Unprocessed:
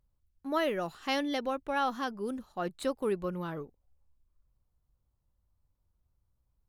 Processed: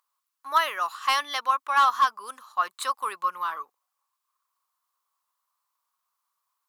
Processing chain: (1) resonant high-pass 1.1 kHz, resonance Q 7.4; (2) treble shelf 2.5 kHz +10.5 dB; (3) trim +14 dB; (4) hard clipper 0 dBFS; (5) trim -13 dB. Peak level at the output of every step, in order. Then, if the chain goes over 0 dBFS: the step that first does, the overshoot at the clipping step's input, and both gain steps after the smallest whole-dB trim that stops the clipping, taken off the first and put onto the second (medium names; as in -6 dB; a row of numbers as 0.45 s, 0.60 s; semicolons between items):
-11.5 dBFS, -9.5 dBFS, +4.5 dBFS, 0.0 dBFS, -13.0 dBFS; step 3, 4.5 dB; step 3 +9 dB, step 5 -8 dB